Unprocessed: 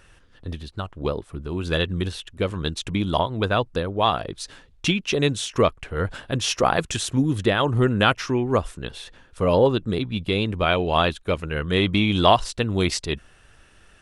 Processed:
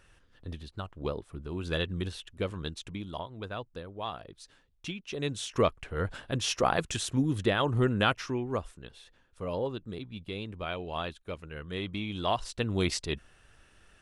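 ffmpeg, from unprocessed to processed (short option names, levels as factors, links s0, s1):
-af "volume=3.35,afade=t=out:st=2.42:d=0.66:silence=0.375837,afade=t=in:st=5.08:d=0.49:silence=0.316228,afade=t=out:st=7.89:d=0.99:silence=0.375837,afade=t=in:st=12.24:d=0.43:silence=0.375837"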